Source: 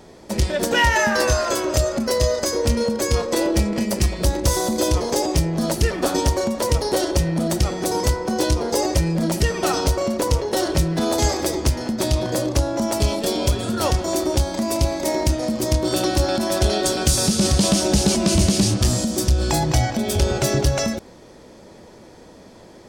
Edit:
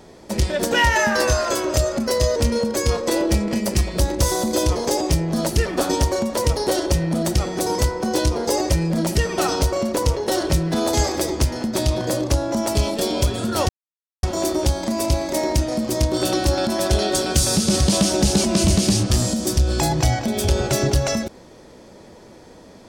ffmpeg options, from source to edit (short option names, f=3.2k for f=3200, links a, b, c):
-filter_complex "[0:a]asplit=3[a][b][c];[a]atrim=end=2.362[d];[b]atrim=start=2.608:end=13.94,asetpts=PTS-STARTPTS,afade=t=out:st=11.328:d=0.004:c=hsin,apad=pad_dur=0.54[e];[c]atrim=start=13.94,asetpts=PTS-STARTPTS,afade=t=in:d=0.004:c=hsin[f];[e][f]concat=n=2:v=0:a=1[g];[d][g]acrossfade=d=0.004:c1=hsin:c2=hsin"